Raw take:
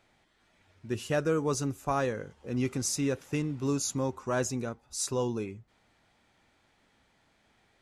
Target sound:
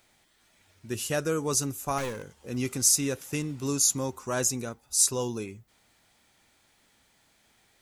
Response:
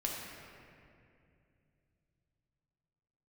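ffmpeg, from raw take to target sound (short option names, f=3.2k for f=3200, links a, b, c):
-filter_complex "[0:a]asettb=1/sr,asplit=3[a][b][c];[a]atrim=end=1.984[d];[b]atrim=start=1.98:end=2.4,asetpts=PTS-STARTPTS,afade=t=in:d=0.004:c=qsin,afade=t=out:st=0.416:d=0.004:c=qsin,aeval=exprs='clip(val(0),-1,0.0224)':c=same[e];[c]atrim=start=2.396[f];[d][e]acrossfade=d=0.004:c1=hsin:c2=qsin[g];[g][f]acrossfade=d=0.004:c1=qsin:c2=hsin,aemphasis=mode=production:type=75fm"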